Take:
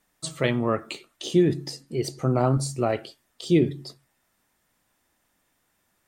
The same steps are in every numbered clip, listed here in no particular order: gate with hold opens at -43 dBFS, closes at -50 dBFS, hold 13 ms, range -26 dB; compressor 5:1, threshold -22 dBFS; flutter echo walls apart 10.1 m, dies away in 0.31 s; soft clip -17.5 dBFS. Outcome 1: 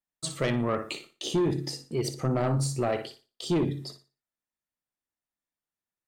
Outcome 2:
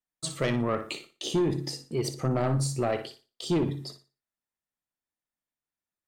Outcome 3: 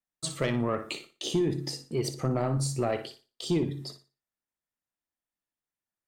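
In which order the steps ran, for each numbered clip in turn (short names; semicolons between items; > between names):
gate with hold > flutter echo > soft clip > compressor; soft clip > gate with hold > flutter echo > compressor; compressor > soft clip > gate with hold > flutter echo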